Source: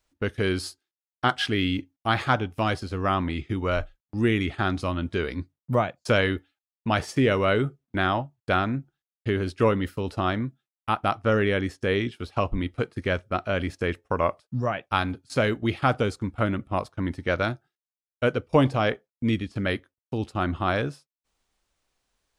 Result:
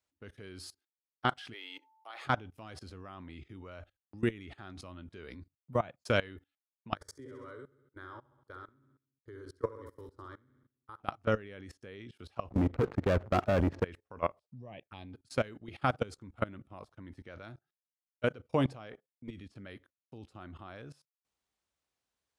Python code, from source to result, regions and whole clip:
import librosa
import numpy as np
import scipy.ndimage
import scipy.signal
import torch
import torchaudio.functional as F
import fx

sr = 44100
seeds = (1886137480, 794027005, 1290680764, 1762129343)

y = fx.highpass(x, sr, hz=470.0, slope=24, at=(1.52, 2.24), fade=0.02)
y = fx.notch(y, sr, hz=1600.0, q=14.0, at=(1.52, 2.24), fade=0.02)
y = fx.dmg_tone(y, sr, hz=880.0, level_db=-57.0, at=(1.52, 2.24), fade=0.02)
y = fx.chain(y, sr, fx.level_steps(step_db=19),
    fx.fixed_phaser(hz=710.0, stages=6),
    fx.echo_feedback(ms=66, feedback_pct=49, wet_db=-7.0), at=(6.95, 11.0))
y = fx.chain(y, sr, fx.lowpass(hz=1100.0, slope=12),
    fx.leveller(passes=3),
    fx.sustainer(db_per_s=42.0), at=(12.5, 13.84))
y = fx.chain(y, sr, fx.high_shelf(hz=3500.0, db=-6.5),
    fx.env_phaser(low_hz=280.0, high_hz=1400.0, full_db=-25.0), at=(14.39, 15.13))
y = scipy.signal.sosfilt(scipy.signal.butter(4, 57.0, 'highpass', fs=sr, output='sos'), y)
y = fx.level_steps(y, sr, step_db=21)
y = y * librosa.db_to_amplitude(-5.0)